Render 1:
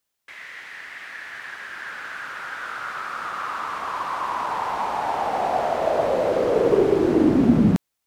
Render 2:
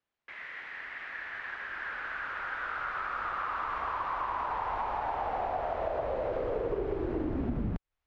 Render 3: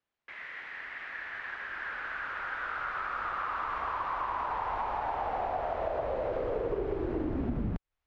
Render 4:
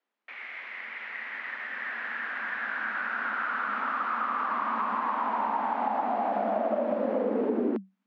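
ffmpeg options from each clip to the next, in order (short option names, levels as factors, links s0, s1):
-af "lowpass=2500,asubboost=boost=11.5:cutoff=57,acompressor=threshold=0.0447:ratio=6,volume=0.75"
-af anull
-af "afreqshift=190,highshelf=f=4200:g=-11.5,aresample=16000,aresample=44100,volume=1.68"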